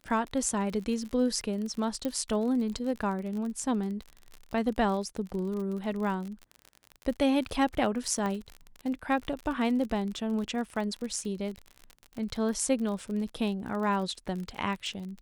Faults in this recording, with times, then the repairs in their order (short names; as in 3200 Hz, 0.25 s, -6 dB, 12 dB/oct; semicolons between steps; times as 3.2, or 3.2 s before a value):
crackle 46/s -35 dBFS
2.05 pop -18 dBFS
8.26 pop -20 dBFS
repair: de-click